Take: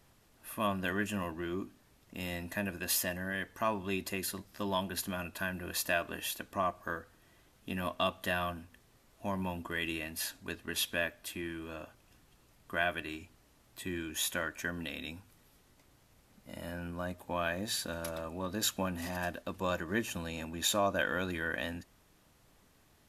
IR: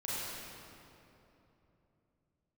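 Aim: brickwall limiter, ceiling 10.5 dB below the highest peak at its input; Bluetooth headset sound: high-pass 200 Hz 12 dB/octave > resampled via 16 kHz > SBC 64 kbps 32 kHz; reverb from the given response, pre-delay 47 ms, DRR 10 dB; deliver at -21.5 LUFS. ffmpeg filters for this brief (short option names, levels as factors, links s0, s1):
-filter_complex "[0:a]alimiter=level_in=1.33:limit=0.0631:level=0:latency=1,volume=0.75,asplit=2[s0][s1];[1:a]atrim=start_sample=2205,adelay=47[s2];[s1][s2]afir=irnorm=-1:irlink=0,volume=0.188[s3];[s0][s3]amix=inputs=2:normalize=0,highpass=200,aresample=16000,aresample=44100,volume=7.94" -ar 32000 -c:a sbc -b:a 64k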